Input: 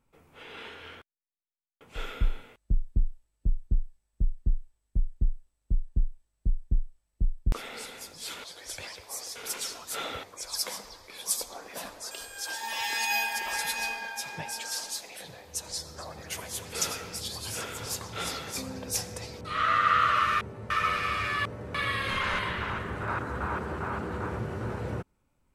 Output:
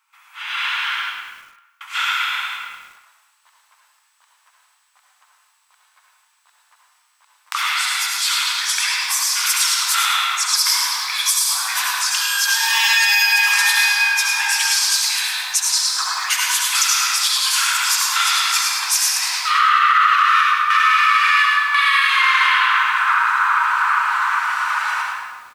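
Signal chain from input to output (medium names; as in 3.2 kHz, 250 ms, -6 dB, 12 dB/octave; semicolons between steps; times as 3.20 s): steep high-pass 990 Hz 48 dB/octave; peaking EQ 11 kHz -4 dB 1 oct; reverberation RT60 1.3 s, pre-delay 62 ms, DRR -0.5 dB; compression 2:1, threshold -42 dBFS, peak gain reduction 13.5 dB; delay 107 ms -9.5 dB; level rider gain up to 8 dB; loudness maximiser +19 dB; bit-crushed delay 103 ms, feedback 55%, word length 6-bit, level -11 dB; trim -4.5 dB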